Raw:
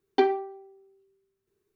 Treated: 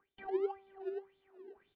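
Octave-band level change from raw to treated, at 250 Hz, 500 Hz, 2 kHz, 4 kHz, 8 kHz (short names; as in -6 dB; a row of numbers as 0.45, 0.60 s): -10.0 dB, -9.0 dB, -16.0 dB, under -20 dB, n/a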